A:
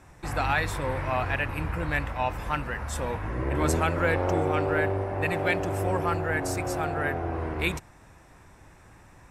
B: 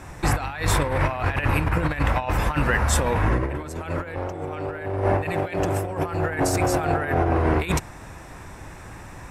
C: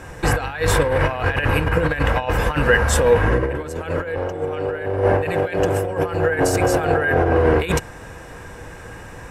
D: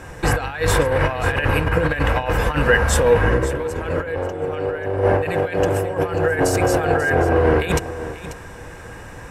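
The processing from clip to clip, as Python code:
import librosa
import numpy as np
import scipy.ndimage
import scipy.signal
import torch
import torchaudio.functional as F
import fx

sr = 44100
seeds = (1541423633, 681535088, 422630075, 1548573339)

y1 = fx.over_compress(x, sr, threshold_db=-31.0, ratio=-0.5)
y1 = F.gain(torch.from_numpy(y1), 8.5).numpy()
y2 = fx.small_body(y1, sr, hz=(480.0, 1600.0, 2900.0), ring_ms=55, db=12)
y2 = F.gain(torch.from_numpy(y2), 2.0).numpy()
y3 = y2 + 10.0 ** (-13.5 / 20.0) * np.pad(y2, (int(539 * sr / 1000.0), 0))[:len(y2)]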